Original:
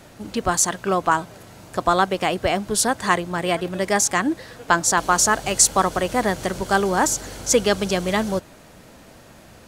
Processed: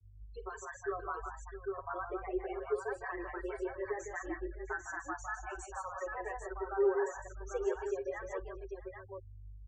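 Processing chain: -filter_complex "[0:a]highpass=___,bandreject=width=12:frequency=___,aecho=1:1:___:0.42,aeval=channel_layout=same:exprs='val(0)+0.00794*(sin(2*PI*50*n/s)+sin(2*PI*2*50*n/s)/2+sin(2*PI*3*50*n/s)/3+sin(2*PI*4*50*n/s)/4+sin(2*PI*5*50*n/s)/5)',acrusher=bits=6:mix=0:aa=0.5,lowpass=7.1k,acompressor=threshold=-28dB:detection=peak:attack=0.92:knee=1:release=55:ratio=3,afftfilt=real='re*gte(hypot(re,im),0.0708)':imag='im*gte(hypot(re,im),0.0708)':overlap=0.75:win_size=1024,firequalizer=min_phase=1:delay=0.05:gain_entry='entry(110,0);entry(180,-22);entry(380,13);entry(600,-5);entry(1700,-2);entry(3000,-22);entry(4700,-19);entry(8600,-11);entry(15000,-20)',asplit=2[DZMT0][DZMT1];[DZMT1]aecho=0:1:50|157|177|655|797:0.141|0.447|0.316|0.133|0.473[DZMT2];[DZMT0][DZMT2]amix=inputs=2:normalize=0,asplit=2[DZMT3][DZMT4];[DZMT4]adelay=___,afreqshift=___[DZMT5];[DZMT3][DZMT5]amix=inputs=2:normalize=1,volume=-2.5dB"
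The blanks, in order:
810, 5.4k, 5.3, 6.5, 0.96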